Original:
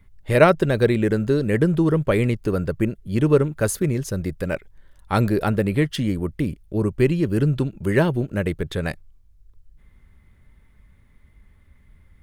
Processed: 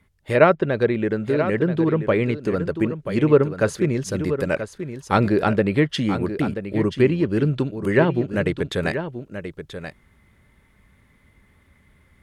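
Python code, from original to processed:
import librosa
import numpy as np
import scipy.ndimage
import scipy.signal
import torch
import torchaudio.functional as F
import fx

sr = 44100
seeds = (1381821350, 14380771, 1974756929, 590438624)

y = fx.highpass(x, sr, hz=190.0, slope=6)
y = fx.env_lowpass_down(y, sr, base_hz=2700.0, full_db=-16.0)
y = fx.rider(y, sr, range_db=4, speed_s=2.0)
y = y + 10.0 ** (-10.0 / 20.0) * np.pad(y, (int(982 * sr / 1000.0), 0))[:len(y)]
y = F.gain(torch.from_numpy(y), 1.0).numpy()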